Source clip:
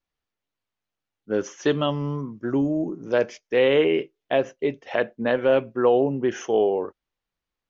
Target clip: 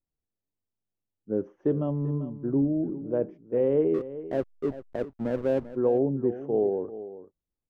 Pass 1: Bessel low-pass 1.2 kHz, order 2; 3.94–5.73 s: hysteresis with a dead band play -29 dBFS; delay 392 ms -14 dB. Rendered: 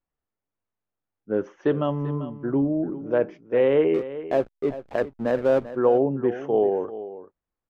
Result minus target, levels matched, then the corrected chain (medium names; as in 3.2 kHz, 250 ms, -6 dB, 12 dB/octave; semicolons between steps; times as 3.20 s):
1 kHz band +6.0 dB
Bessel low-pass 360 Hz, order 2; 3.94–5.73 s: hysteresis with a dead band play -29 dBFS; delay 392 ms -14 dB